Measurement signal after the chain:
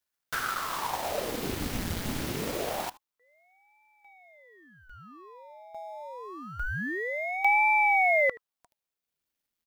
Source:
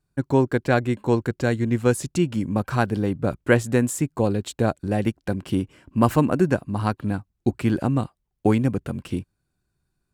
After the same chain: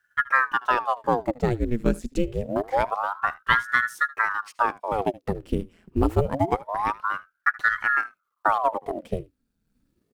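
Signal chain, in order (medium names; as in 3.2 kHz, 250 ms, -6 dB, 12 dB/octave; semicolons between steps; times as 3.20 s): companding laws mixed up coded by mu; transient shaper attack +4 dB, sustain -5 dB; graphic EQ 125/1000/8000 Hz +9/-3/-3 dB; on a send: delay 76 ms -21 dB; on the sum: ring modulator with a swept carrier 840 Hz, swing 90%, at 0.26 Hz; trim -5.5 dB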